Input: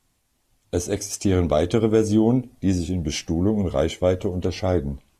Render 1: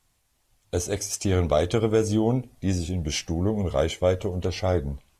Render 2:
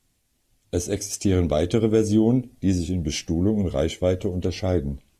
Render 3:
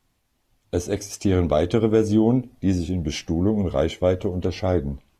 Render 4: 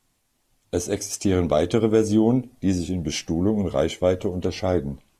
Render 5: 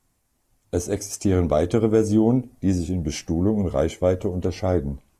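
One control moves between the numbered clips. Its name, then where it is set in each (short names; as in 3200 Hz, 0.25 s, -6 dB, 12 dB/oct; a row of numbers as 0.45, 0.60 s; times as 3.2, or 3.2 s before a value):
bell, frequency: 260, 1000, 8700, 61, 3400 Hz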